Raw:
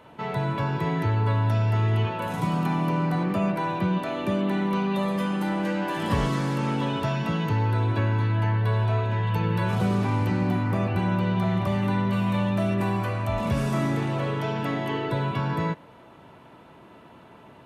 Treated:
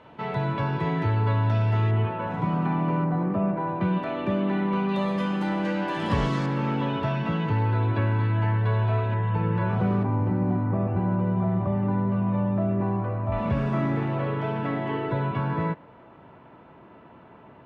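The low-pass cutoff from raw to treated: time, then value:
4.2 kHz
from 1.91 s 2 kHz
from 3.04 s 1.2 kHz
from 3.81 s 2.8 kHz
from 4.89 s 5.4 kHz
from 6.46 s 3 kHz
from 9.14 s 1.8 kHz
from 10.03 s 1 kHz
from 13.32 s 2.2 kHz

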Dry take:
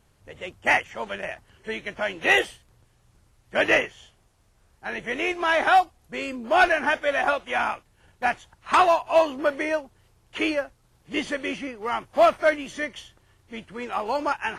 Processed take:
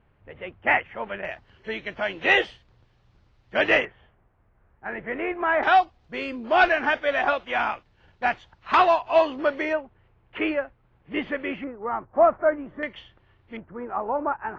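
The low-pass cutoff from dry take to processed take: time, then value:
low-pass 24 dB/octave
2.6 kHz
from 1.25 s 4.6 kHz
from 3.85 s 2 kHz
from 5.63 s 4.6 kHz
from 9.73 s 2.6 kHz
from 11.64 s 1.4 kHz
from 12.83 s 3.2 kHz
from 13.57 s 1.4 kHz

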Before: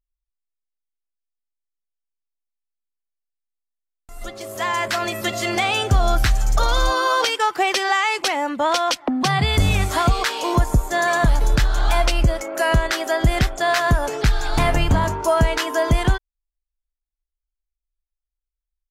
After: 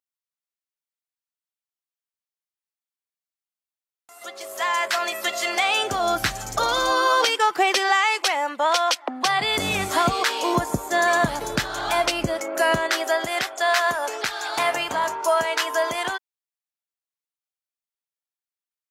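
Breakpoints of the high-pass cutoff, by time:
5.64 s 600 Hz
6.30 s 170 Hz
7.58 s 170 Hz
8.19 s 540 Hz
9.28 s 540 Hz
9.84 s 200 Hz
12.63 s 200 Hz
13.33 s 600 Hz

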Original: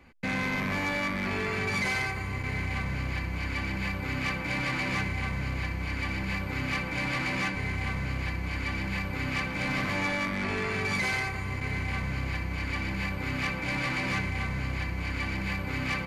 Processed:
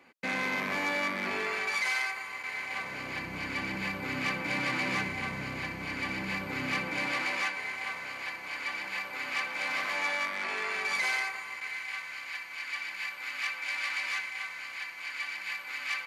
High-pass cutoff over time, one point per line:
1.27 s 310 Hz
1.83 s 850 Hz
2.52 s 850 Hz
3.31 s 200 Hz
6.84 s 200 Hz
7.49 s 680 Hz
11.10 s 680 Hz
11.77 s 1.4 kHz

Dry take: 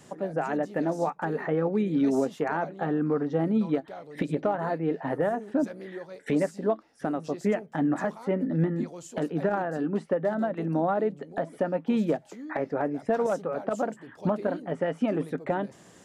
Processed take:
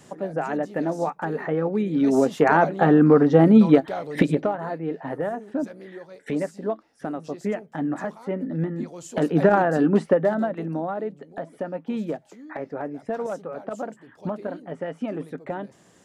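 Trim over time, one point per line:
1.94 s +2 dB
2.50 s +11.5 dB
4.18 s +11.5 dB
4.58 s -1 dB
8.76 s -1 dB
9.37 s +9.5 dB
10.02 s +9.5 dB
10.85 s -3 dB

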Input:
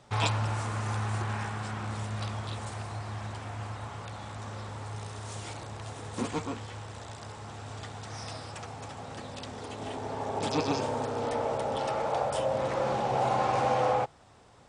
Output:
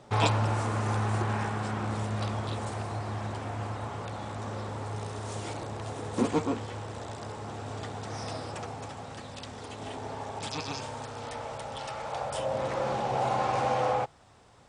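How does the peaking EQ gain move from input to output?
peaking EQ 370 Hz 2.6 oct
8.57 s +7.5 dB
9.21 s -2.5 dB
10.08 s -2.5 dB
10.50 s -11.5 dB
11.97 s -11.5 dB
12.54 s -1.5 dB

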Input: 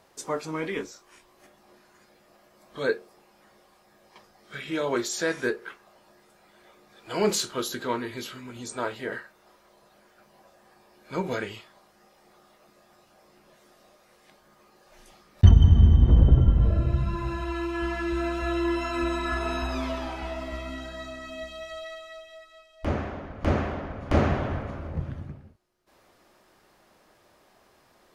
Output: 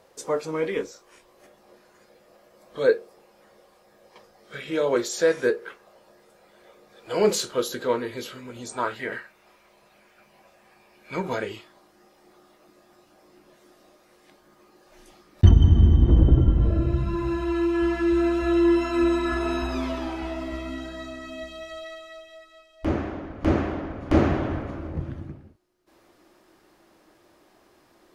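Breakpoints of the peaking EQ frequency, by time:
peaking EQ +10 dB 0.44 oct
8.59 s 500 Hz
9.09 s 2.4 kHz
11.14 s 2.4 kHz
11.54 s 320 Hz

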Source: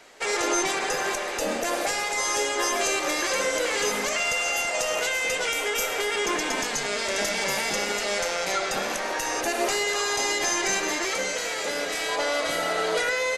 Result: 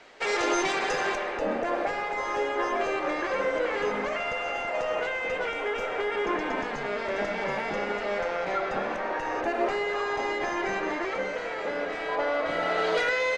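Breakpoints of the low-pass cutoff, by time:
1.02 s 4.1 kHz
1.43 s 1.7 kHz
12.44 s 1.7 kHz
12.87 s 3.6 kHz

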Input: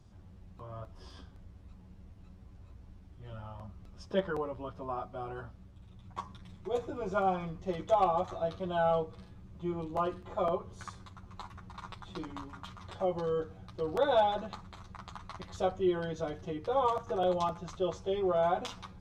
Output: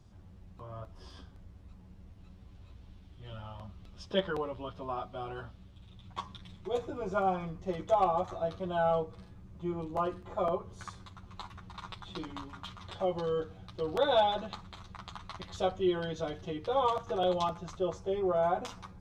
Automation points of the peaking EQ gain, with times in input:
peaking EQ 3.4 kHz 0.99 oct
1.97 s +1 dB
2.68 s +9.5 dB
6.37 s +9.5 dB
7.08 s -1.5 dB
10.59 s -1.5 dB
11.29 s +6 dB
17.39 s +6 dB
17.93 s -5.5 dB

